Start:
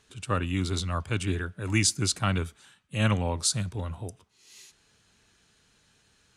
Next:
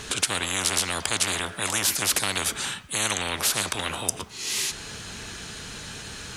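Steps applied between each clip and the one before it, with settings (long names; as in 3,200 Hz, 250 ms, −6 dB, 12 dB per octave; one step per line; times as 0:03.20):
every bin compressed towards the loudest bin 10 to 1
level +9 dB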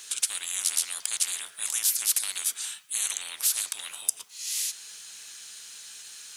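first difference
level −1 dB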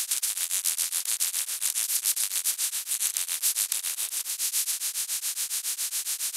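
compressor on every frequency bin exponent 0.2
tremolo along a rectified sine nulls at 7.2 Hz
level −4 dB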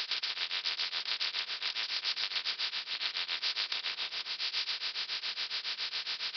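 notch comb filter 280 Hz
echo through a band-pass that steps 168 ms, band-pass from 160 Hz, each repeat 0.7 octaves, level −8.5 dB
downsampling to 11,025 Hz
level +4 dB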